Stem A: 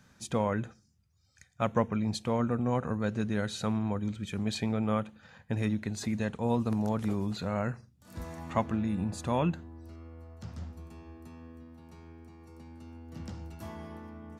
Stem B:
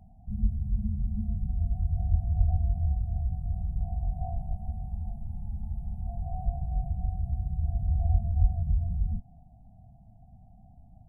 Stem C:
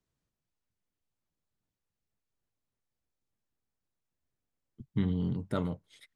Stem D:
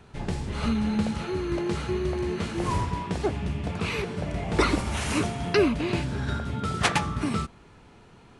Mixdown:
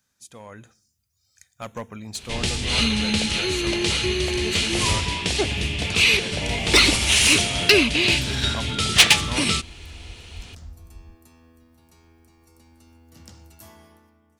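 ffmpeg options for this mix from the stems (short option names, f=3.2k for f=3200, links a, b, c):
-filter_complex "[0:a]crystalizer=i=4.5:c=0,volume=18dB,asoftclip=hard,volume=-18dB,dynaudnorm=f=140:g=9:m=11.5dB,volume=-16.5dB[a];[1:a]adelay=1950,volume=-16dB[b];[3:a]highshelf=f=1.9k:t=q:w=1.5:g=13.5,acontrast=87,adelay=2150,volume=-3.5dB[c];[a][b][c]amix=inputs=3:normalize=0,equalizer=f=170:w=1.8:g=-5"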